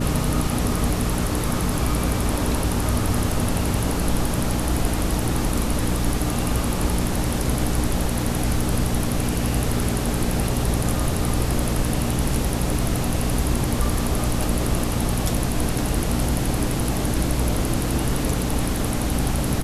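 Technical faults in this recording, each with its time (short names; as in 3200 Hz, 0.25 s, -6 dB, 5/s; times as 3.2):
hum 60 Hz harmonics 5 -26 dBFS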